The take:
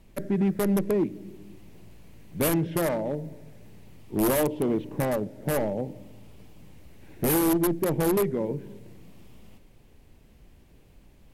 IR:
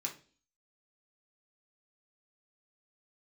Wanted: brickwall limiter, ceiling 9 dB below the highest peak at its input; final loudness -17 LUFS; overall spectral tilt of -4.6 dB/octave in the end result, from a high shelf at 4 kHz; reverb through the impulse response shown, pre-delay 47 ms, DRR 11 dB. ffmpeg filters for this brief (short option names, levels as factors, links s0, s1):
-filter_complex "[0:a]highshelf=f=4000:g=8,alimiter=limit=0.112:level=0:latency=1,asplit=2[s0][s1];[1:a]atrim=start_sample=2205,adelay=47[s2];[s1][s2]afir=irnorm=-1:irlink=0,volume=0.282[s3];[s0][s3]amix=inputs=2:normalize=0,volume=3.76"